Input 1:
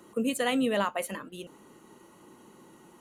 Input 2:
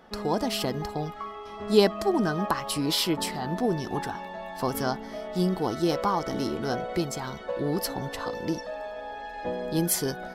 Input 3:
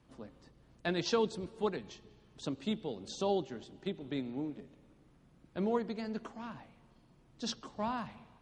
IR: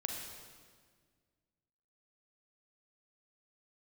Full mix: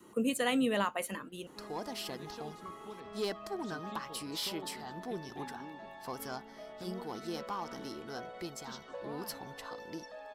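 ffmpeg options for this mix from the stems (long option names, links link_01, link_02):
-filter_complex "[0:a]volume=-2.5dB,asplit=2[link_01][link_02];[1:a]lowshelf=frequency=270:gain=-10,asoftclip=type=tanh:threshold=-18.5dB,adelay=1450,volume=-9.5dB[link_03];[2:a]acompressor=threshold=-41dB:ratio=2,adelay=1250,volume=-7dB[link_04];[link_02]apad=whole_len=426335[link_05];[link_04][link_05]sidechaincompress=threshold=-44dB:ratio=8:attack=16:release=1290[link_06];[link_01][link_03][link_06]amix=inputs=3:normalize=0,adynamicequalizer=threshold=0.00282:dfrequency=600:dqfactor=2.3:tfrequency=600:tqfactor=2.3:attack=5:release=100:ratio=0.375:range=2:mode=cutabove:tftype=bell"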